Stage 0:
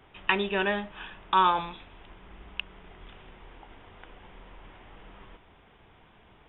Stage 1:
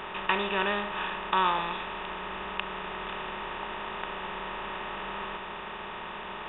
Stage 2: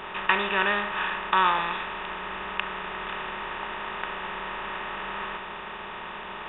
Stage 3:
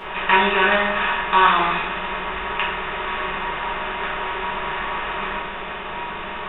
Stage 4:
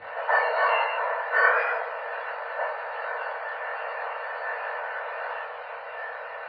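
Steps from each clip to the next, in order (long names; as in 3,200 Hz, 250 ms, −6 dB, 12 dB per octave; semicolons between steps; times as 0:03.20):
compressor on every frequency bin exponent 0.4; level −5.5 dB
dynamic equaliser 1,700 Hz, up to +7 dB, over −42 dBFS, Q 1
rectangular room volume 100 cubic metres, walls mixed, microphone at 1.7 metres
frequency axis turned over on the octave scale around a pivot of 1,300 Hz; low-pass filter 2,700 Hz 24 dB per octave; micro pitch shift up and down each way 45 cents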